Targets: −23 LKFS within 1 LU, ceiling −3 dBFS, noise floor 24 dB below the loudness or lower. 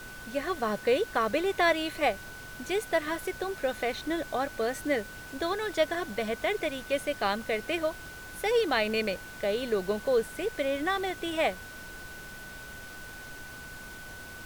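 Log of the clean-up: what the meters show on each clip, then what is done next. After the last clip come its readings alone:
interfering tone 1,500 Hz; level of the tone −44 dBFS; background noise floor −44 dBFS; target noise floor −54 dBFS; integrated loudness −30.0 LKFS; sample peak −13.5 dBFS; target loudness −23.0 LKFS
→ notch filter 1,500 Hz, Q 30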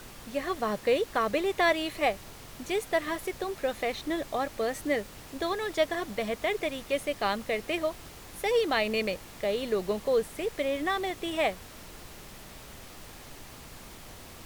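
interfering tone none found; background noise floor −47 dBFS; target noise floor −54 dBFS
→ noise reduction from a noise print 7 dB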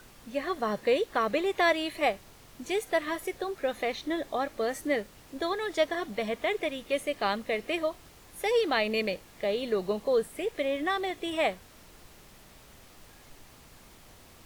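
background noise floor −54 dBFS; integrated loudness −30.0 LKFS; sample peak −13.5 dBFS; target loudness −23.0 LKFS
→ level +7 dB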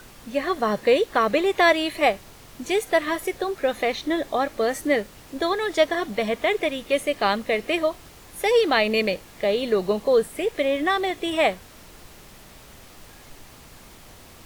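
integrated loudness −23.0 LKFS; sample peak −6.5 dBFS; background noise floor −47 dBFS

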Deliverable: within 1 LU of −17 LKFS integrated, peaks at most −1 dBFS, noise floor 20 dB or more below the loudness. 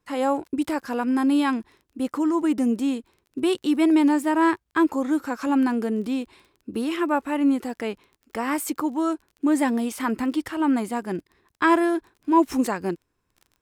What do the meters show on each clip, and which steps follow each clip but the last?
crackle rate 25 per second; integrated loudness −24.0 LKFS; sample peak −6.0 dBFS; target loudness −17.0 LKFS
→ click removal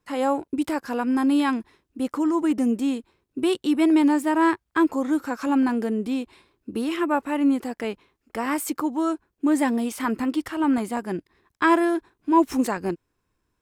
crackle rate 0.66 per second; integrated loudness −24.0 LKFS; sample peak −6.0 dBFS; target loudness −17.0 LKFS
→ level +7 dB
brickwall limiter −1 dBFS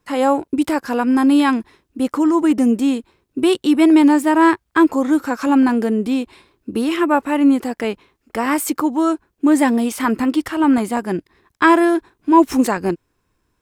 integrated loudness −17.0 LKFS; sample peak −1.0 dBFS; background noise floor −70 dBFS

